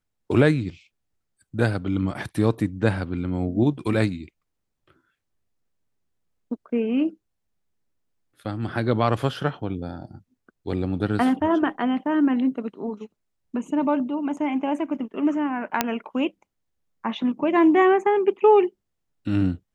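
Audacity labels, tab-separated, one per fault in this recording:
15.810000	15.810000	pop -3 dBFS

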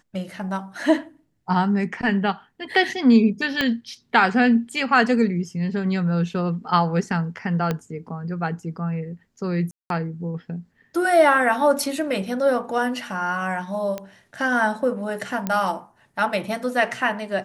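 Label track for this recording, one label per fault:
3.610000	3.610000	pop -8 dBFS
7.710000	7.710000	pop -11 dBFS
9.710000	9.900000	dropout 192 ms
13.980000	13.980000	pop -16 dBFS
15.470000	15.470000	pop -11 dBFS

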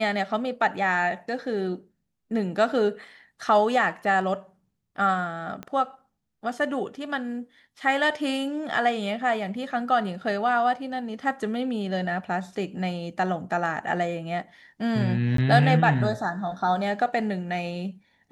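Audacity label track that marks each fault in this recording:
5.630000	5.630000	pop -22 dBFS
15.370000	15.380000	dropout 13 ms

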